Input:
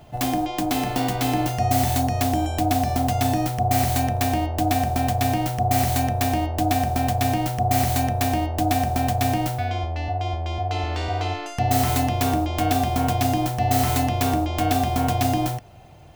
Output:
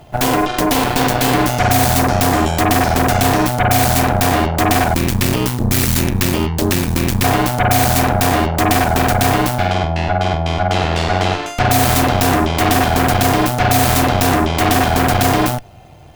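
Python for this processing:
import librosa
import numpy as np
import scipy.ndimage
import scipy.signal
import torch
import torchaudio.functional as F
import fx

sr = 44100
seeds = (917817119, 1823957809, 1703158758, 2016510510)

y = fx.cheby1_bandstop(x, sr, low_hz=380.0, high_hz=900.0, order=3, at=(4.94, 7.24))
y = fx.cheby_harmonics(y, sr, harmonics=(8,), levels_db=(-11,), full_scale_db=-9.0)
y = y * librosa.db_to_amplitude(5.5)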